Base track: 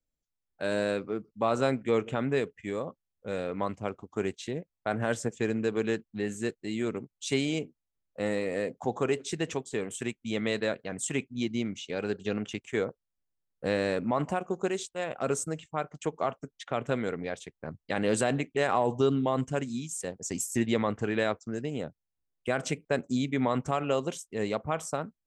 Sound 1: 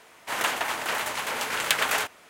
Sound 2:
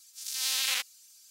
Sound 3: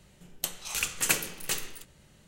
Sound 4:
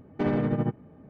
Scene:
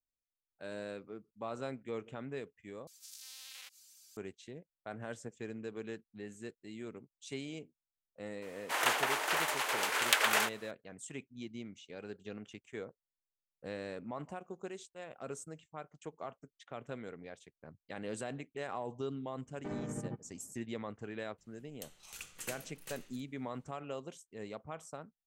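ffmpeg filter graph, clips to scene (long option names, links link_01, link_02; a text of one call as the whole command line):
ffmpeg -i bed.wav -i cue0.wav -i cue1.wav -i cue2.wav -i cue3.wav -filter_complex "[0:a]volume=-14dB[link_01];[2:a]acompressor=threshold=-41dB:ratio=6:attack=3.2:release=140:knee=1:detection=peak[link_02];[1:a]highpass=frequency=320:width=0.5412,highpass=frequency=320:width=1.3066[link_03];[link_01]asplit=2[link_04][link_05];[link_04]atrim=end=2.874[link_06];[link_02]atrim=end=1.3,asetpts=PTS-STARTPTS,volume=-4.5dB[link_07];[link_05]atrim=start=4.166[link_08];[link_03]atrim=end=2.29,asetpts=PTS-STARTPTS,volume=-4dB,afade=type=in:duration=0.004:curve=hsin,afade=type=out:start_time=2.286:duration=0.004:curve=hsin,adelay=371322S[link_09];[4:a]atrim=end=1.09,asetpts=PTS-STARTPTS,volume=-14.5dB,afade=type=in:duration=0.02,afade=type=out:start_time=1.07:duration=0.02,adelay=19450[link_10];[3:a]atrim=end=2.27,asetpts=PTS-STARTPTS,volume=-17.5dB,afade=type=in:duration=0.004:curve=hsin,afade=type=out:start_time=2.266:duration=0.004:curve=hsin,adelay=21380[link_11];[link_06][link_07]acrossfade=duration=0.004:curve1=hsin:curve2=hsin[link_12];[link_12][link_08]acrossfade=duration=0.004:curve1=hsin:curve2=hsin[link_13];[link_13][link_09][link_10][link_11]amix=inputs=4:normalize=0" out.wav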